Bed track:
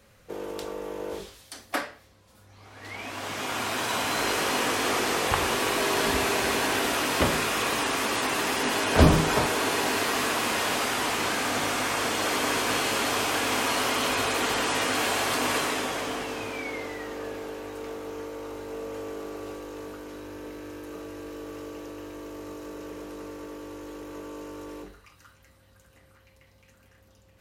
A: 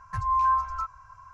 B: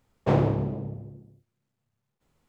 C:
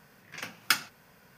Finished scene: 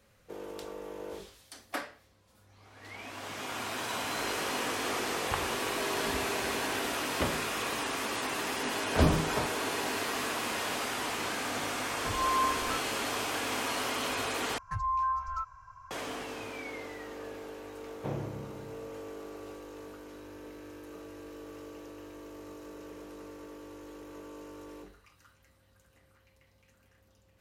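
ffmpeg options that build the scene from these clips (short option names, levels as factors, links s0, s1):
-filter_complex "[1:a]asplit=2[s0][s1];[0:a]volume=0.447[s2];[s1]acompressor=threshold=0.0631:ratio=4:attack=0.15:release=352:knee=1:detection=rms[s3];[s2]asplit=2[s4][s5];[s4]atrim=end=14.584[s6];[s3]atrim=end=1.33,asetpts=PTS-STARTPTS,volume=0.75[s7];[s5]atrim=start=15.906[s8];[s0]atrim=end=1.33,asetpts=PTS-STARTPTS,volume=0.473,afade=t=in:d=0.004:c=hsin,afade=t=out:st=1.326:d=0.004:c=hsin,adelay=11920[s9];[2:a]atrim=end=2.48,asetpts=PTS-STARTPTS,volume=0.188,afade=t=in:d=0.004:c=hsin,afade=t=out:st=2.476:d=0.004:c=hsin,adelay=17770[s10];[s6][s7]acrossfade=d=0.004:c1=hsin:c2=hsin[s11];[s11][s8]acrossfade=d=0.004:c1=hsin:c2=hsin[s12];[s12][s9][s10]amix=inputs=3:normalize=0"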